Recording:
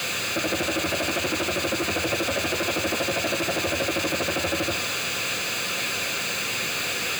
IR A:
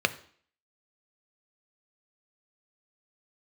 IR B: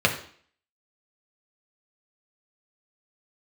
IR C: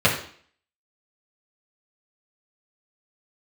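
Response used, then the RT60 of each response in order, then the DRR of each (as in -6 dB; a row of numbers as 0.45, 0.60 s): A; 0.50, 0.50, 0.50 s; 10.0, 0.5, -6.5 dB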